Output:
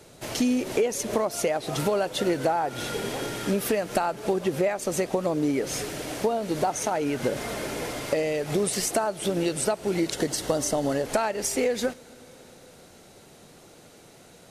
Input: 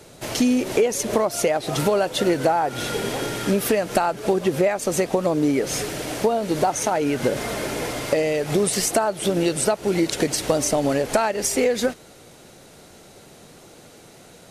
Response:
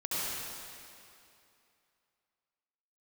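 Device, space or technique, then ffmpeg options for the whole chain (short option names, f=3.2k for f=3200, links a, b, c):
compressed reverb return: -filter_complex "[0:a]asettb=1/sr,asplit=3[a][b][c];[a]atrim=end=10.144[d];[b]atrim=start=10.14:end=11.06,asetpts=PTS-STARTPTS,afade=t=in:d=0.004:c=qsin,afade=t=out:st=0.916:d=0.004:c=qsin,bandreject=f=2.4k:w=5.1[e];[c]atrim=start=11.056[f];[d][e]acrossfade=d=0.004:c1=hsin:c2=qsin[g];[g][f]acrossfade=d=0.004:c1=qsin:c2=hsin,asplit=2[h][i];[1:a]atrim=start_sample=2205[j];[i][j]afir=irnorm=-1:irlink=0,acompressor=threshold=-21dB:ratio=6,volume=-21dB[k];[h][k]amix=inputs=2:normalize=0,volume=-5dB"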